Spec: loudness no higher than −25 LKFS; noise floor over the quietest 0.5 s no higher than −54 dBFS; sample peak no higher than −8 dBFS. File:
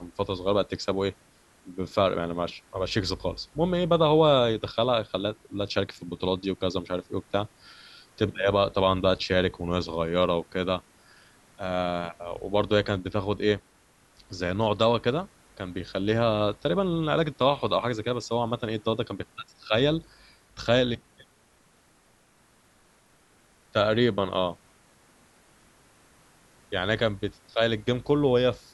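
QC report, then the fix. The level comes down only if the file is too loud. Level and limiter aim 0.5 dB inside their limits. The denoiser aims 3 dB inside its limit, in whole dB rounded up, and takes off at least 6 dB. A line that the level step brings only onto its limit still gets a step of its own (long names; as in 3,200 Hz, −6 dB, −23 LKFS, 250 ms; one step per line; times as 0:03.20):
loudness −26.5 LKFS: in spec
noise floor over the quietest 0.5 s −62 dBFS: in spec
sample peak −7.0 dBFS: out of spec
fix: brickwall limiter −8.5 dBFS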